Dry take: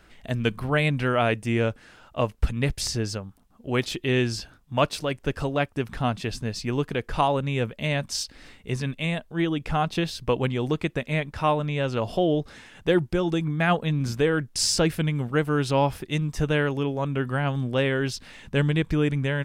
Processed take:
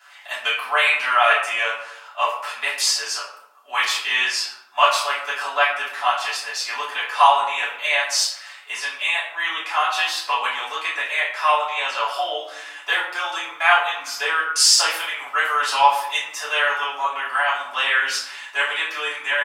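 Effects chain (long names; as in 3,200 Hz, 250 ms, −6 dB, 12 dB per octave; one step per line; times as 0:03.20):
high-pass filter 940 Hz 24 dB per octave
comb filter 7 ms, depth 42%
convolution reverb RT60 0.80 s, pre-delay 3 ms, DRR −12 dB
level −1 dB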